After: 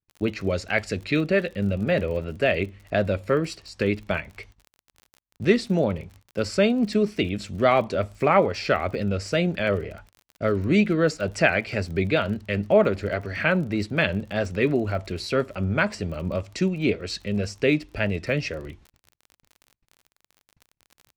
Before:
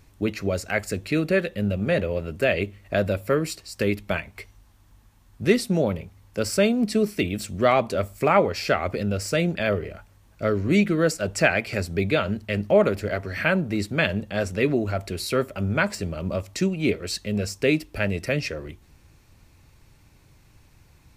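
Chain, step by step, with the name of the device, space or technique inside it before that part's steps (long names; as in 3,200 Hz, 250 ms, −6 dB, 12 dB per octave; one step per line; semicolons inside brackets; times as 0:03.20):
noise gate −48 dBFS, range −41 dB
0:00.47–0:01.20: dynamic equaliser 3,700 Hz, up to +6 dB, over −41 dBFS, Q 0.95
lo-fi chain (low-pass filter 5,300 Hz 12 dB per octave; tape wow and flutter; surface crackle 40 per second −36 dBFS)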